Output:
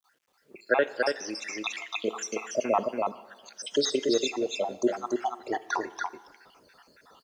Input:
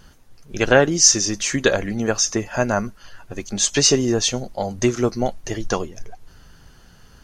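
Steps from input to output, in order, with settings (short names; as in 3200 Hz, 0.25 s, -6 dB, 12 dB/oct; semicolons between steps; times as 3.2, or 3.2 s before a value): random spectral dropouts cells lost 71%; echo 0.285 s -4 dB; AGC gain up to 10.5 dB; three-band isolator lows -22 dB, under 270 Hz, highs -15 dB, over 3700 Hz; plate-style reverb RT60 1.4 s, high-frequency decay 0.9×, DRR 15.5 dB; bit-crush 11-bit; HPF 56 Hz; low shelf 210 Hz -8.5 dB; gain -6 dB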